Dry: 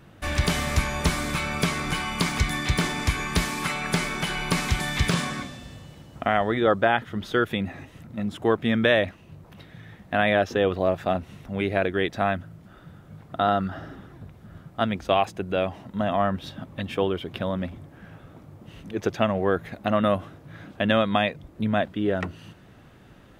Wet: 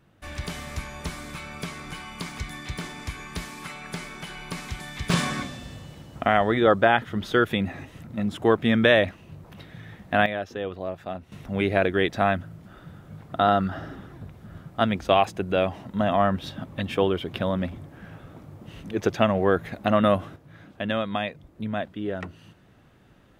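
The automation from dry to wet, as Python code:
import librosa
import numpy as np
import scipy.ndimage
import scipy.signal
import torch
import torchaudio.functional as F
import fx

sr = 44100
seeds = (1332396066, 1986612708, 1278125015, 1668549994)

y = fx.gain(x, sr, db=fx.steps((0.0, -10.0), (5.1, 2.0), (10.26, -9.0), (11.32, 2.0), (20.36, -5.5)))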